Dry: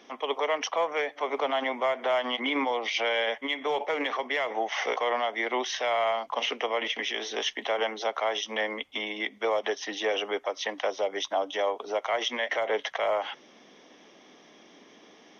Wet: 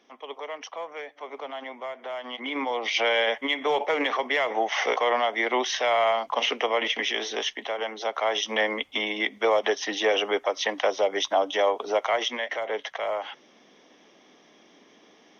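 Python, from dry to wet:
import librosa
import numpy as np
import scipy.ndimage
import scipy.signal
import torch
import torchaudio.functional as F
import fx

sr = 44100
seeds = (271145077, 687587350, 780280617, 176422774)

y = fx.gain(x, sr, db=fx.line((2.16, -8.5), (2.98, 4.0), (7.19, 4.0), (7.78, -3.0), (8.46, 5.0), (12.02, 5.0), (12.52, -2.0)))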